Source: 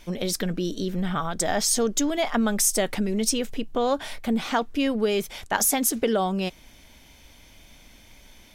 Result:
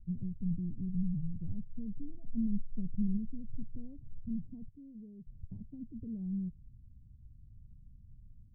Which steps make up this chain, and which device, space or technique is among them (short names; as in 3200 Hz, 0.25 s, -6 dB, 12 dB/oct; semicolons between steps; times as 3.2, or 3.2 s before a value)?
2.14–3.17 comb 4.6 ms, depth 48%; 4.68–5.27 tilt +4 dB/oct; the neighbour's flat through the wall (LPF 160 Hz 24 dB/oct; bell 110 Hz +7.5 dB 0.77 oct); gain -1.5 dB